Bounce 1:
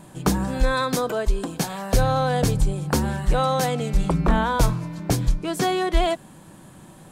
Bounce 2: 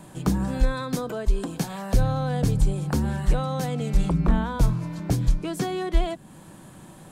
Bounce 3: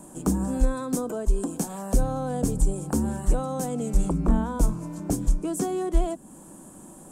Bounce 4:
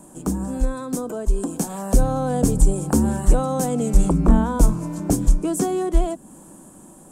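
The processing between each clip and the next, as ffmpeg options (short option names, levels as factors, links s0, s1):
-filter_complex "[0:a]acrossover=split=300[s0][s1];[s1]acompressor=threshold=0.02:ratio=2.5[s2];[s0][s2]amix=inputs=2:normalize=0"
-af "equalizer=f=125:t=o:w=1:g=-12,equalizer=f=250:t=o:w=1:g=6,equalizer=f=2000:t=o:w=1:g=-9,equalizer=f=4000:t=o:w=1:g=-12,equalizer=f=8000:t=o:w=1:g=10"
-af "dynaudnorm=f=480:g=7:m=3.76"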